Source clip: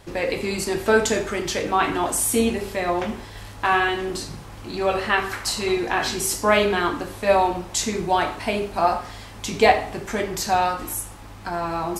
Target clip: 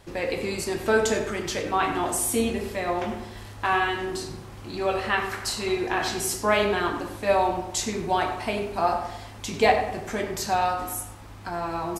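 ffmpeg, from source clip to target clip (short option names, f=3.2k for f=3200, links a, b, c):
-filter_complex "[0:a]asplit=2[a][b];[b]adelay=98,lowpass=f=2k:p=1,volume=-8dB,asplit=2[c][d];[d]adelay=98,lowpass=f=2k:p=1,volume=0.5,asplit=2[e][f];[f]adelay=98,lowpass=f=2k:p=1,volume=0.5,asplit=2[g][h];[h]adelay=98,lowpass=f=2k:p=1,volume=0.5,asplit=2[i][j];[j]adelay=98,lowpass=f=2k:p=1,volume=0.5,asplit=2[k][l];[l]adelay=98,lowpass=f=2k:p=1,volume=0.5[m];[c][e][g][i][k][m]amix=inputs=6:normalize=0[n];[a][n]amix=inputs=2:normalize=0,volume=-4dB"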